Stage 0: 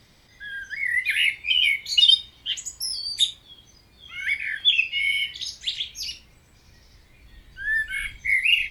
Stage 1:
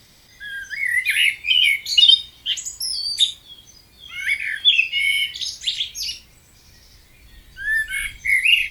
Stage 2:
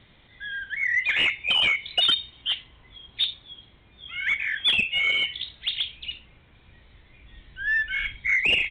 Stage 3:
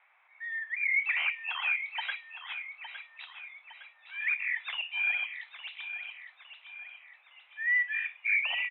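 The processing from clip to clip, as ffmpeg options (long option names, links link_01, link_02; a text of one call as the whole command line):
ffmpeg -i in.wav -filter_complex "[0:a]acrossover=split=4600[link_01][link_02];[link_02]acompressor=threshold=-36dB:ratio=4:attack=1:release=60[link_03];[link_01][link_03]amix=inputs=2:normalize=0,highshelf=frequency=4900:gain=11,volume=2dB" out.wav
ffmpeg -i in.wav -af "aresample=8000,asoftclip=type=tanh:threshold=-16dB,aresample=44100,aeval=exprs='0.299*(cos(1*acos(clip(val(0)/0.299,-1,1)))-cos(1*PI/2))+0.0168*(cos(3*acos(clip(val(0)/0.299,-1,1)))-cos(3*PI/2))':channel_layout=same" out.wav
ffmpeg -i in.wav -af "highpass=frequency=590:width_type=q:width=0.5412,highpass=frequency=590:width_type=q:width=1.307,lowpass=frequency=2200:width_type=q:width=0.5176,lowpass=frequency=2200:width_type=q:width=0.7071,lowpass=frequency=2200:width_type=q:width=1.932,afreqshift=200,aecho=1:1:861|1722|2583|3444|4305:0.299|0.143|0.0688|0.033|0.0158,volume=-2.5dB" out.wav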